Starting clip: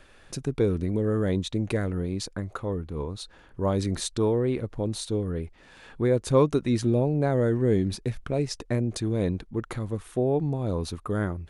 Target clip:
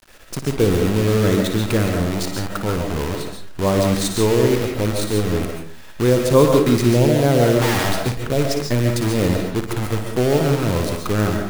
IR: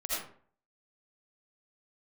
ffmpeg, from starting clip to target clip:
-filter_complex "[0:a]acrusher=bits=6:dc=4:mix=0:aa=0.000001,asettb=1/sr,asplit=3[a][b][c];[a]atrim=end=7.614[d];[b]atrim=start=7.61:end=8.06,asetpts=PTS-STARTPTS,afade=t=in:d=0.004:c=qsin,afade=t=out:st=0.446:d=0.004:c=qsin,aeval=exprs='(mod(15*val(0)+1,2)-1)/15':c=same[e];[c]atrim=start=8.056[f];[d][e]acrossfade=d=0.004:c1=hsin:c2=qsin[g];[g][f]acrossfade=d=0.004:c1=qsin:c2=hsin,asplit=2[h][i];[1:a]atrim=start_sample=2205,adelay=57[j];[i][j]afir=irnorm=-1:irlink=0,volume=-6.5dB[k];[h][k]amix=inputs=2:normalize=0,volume=6.5dB"

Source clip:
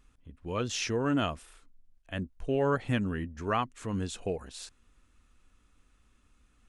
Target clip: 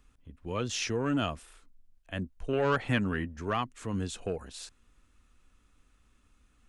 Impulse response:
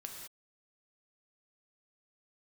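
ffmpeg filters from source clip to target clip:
-filter_complex "[0:a]asettb=1/sr,asplit=3[a][b][c];[a]atrim=end=2.534[d];[b]atrim=start=2.53:end=3.37,asetpts=PTS-STARTPTS,afade=t=in:d=0.004:c=qsin,afade=t=out:st=0.836:d=0.004:c=qsin,equalizer=f=1.3k:w=0.41:g=7[e];[c]atrim=start=3.366[f];[d][e]acrossfade=d=0.004:c1=hsin:c2=qsin[g];[g][f]acrossfade=d=0.004:c1=qsin:c2=hsin,acrossover=split=190|1800[h][i][j];[i]asoftclip=type=tanh:threshold=-23dB[k];[h][k][j]amix=inputs=3:normalize=0"

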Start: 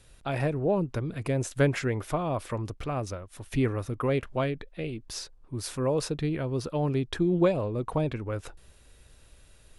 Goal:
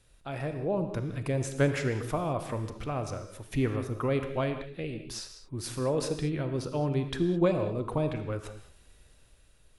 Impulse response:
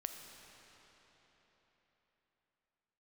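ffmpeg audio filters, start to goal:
-filter_complex "[0:a]dynaudnorm=f=140:g=11:m=5dB[a];[1:a]atrim=start_sample=2205,afade=t=out:st=0.27:d=0.01,atrim=end_sample=12348[b];[a][b]afir=irnorm=-1:irlink=0,volume=-4dB"

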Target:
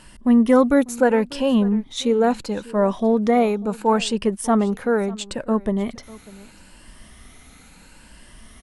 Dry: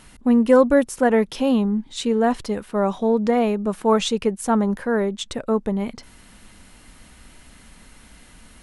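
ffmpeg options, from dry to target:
-af "afftfilt=real='re*pow(10,8/40*sin(2*PI*(1.3*log(max(b,1)*sr/1024/100)/log(2)-(0.74)*(pts-256)/sr)))':imag='im*pow(10,8/40*sin(2*PI*(1.3*log(max(b,1)*sr/1024/100)/log(2)-(0.74)*(pts-256)/sr)))':win_size=1024:overlap=0.75,aecho=1:1:595:0.0891"

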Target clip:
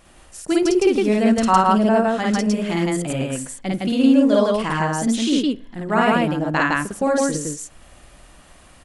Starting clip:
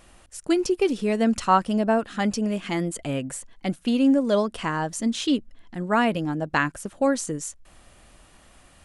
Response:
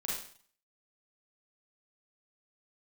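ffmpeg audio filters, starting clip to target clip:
-filter_complex "[0:a]aecho=1:1:52.48|160.3:1|1,asplit=2[a][b];[1:a]atrim=start_sample=2205,lowpass=3.1k[c];[b][c]afir=irnorm=-1:irlink=0,volume=-20.5dB[d];[a][d]amix=inputs=2:normalize=0"

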